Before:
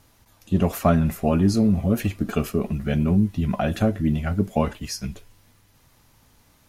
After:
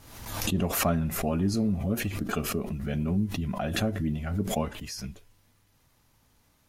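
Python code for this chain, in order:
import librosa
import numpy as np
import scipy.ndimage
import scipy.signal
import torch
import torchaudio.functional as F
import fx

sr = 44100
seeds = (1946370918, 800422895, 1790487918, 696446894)

y = fx.pre_swell(x, sr, db_per_s=55.0)
y = y * librosa.db_to_amplitude(-8.0)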